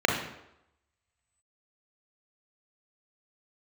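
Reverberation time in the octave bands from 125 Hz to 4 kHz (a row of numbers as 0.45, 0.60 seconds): 0.70, 0.75, 0.85, 0.85, 0.75, 0.65 seconds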